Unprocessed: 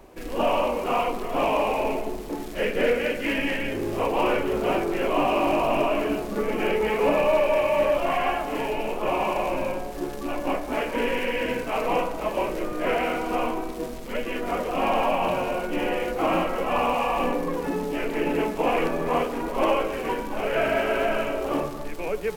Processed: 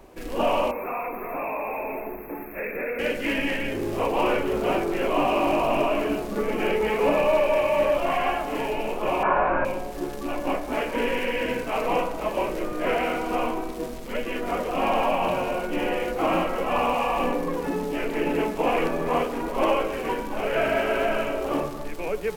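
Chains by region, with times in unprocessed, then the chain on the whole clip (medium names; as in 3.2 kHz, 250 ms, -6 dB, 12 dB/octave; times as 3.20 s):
0.71–2.99 s: tilt EQ +2 dB/octave + compression 3:1, threshold -27 dBFS + brick-wall FIR band-stop 2.7–12 kHz
9.23–9.65 s: resonant low-pass 1.5 kHz, resonance Q 8.1 + doubling 21 ms -4.5 dB
whole clip: none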